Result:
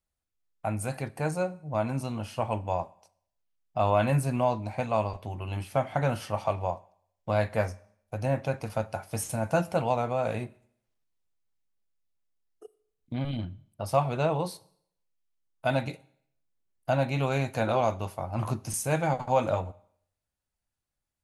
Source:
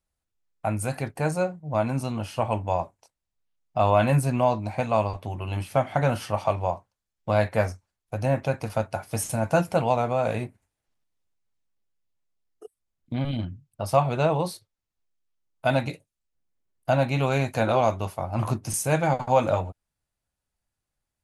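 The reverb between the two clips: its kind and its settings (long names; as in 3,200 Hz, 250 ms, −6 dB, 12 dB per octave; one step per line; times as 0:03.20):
four-comb reverb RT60 0.65 s, combs from 29 ms, DRR 20 dB
level −4 dB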